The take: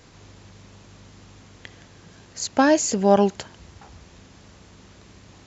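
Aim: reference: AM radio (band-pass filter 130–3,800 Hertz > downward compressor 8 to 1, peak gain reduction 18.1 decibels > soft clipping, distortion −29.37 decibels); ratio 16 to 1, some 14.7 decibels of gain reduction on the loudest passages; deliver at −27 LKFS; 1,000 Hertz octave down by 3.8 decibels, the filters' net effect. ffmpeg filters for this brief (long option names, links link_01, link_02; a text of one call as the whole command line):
ffmpeg -i in.wav -af "equalizer=frequency=1000:width_type=o:gain=-5,acompressor=threshold=-28dB:ratio=16,highpass=130,lowpass=3800,acompressor=threshold=-44dB:ratio=8,asoftclip=threshold=-27.5dB,volume=23.5dB" out.wav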